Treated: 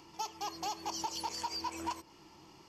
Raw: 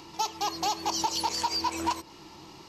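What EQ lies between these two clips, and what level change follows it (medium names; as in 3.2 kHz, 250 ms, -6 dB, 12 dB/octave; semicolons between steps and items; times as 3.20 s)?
band-stop 3.9 kHz, Q 6.5; -9.0 dB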